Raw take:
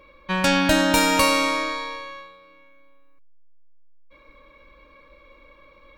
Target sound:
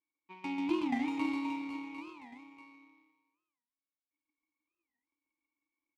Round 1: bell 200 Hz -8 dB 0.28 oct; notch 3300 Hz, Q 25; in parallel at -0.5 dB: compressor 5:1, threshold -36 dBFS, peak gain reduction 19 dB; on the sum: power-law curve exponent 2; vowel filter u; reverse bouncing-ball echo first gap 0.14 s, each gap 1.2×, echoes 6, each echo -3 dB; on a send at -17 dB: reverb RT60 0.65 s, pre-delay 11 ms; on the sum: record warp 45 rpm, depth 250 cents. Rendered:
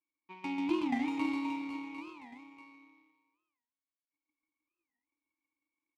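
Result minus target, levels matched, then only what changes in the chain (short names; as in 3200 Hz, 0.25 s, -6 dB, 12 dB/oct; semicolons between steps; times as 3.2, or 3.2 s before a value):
compressor: peak gain reduction -7 dB
change: compressor 5:1, threshold -45 dBFS, peak gain reduction 26.5 dB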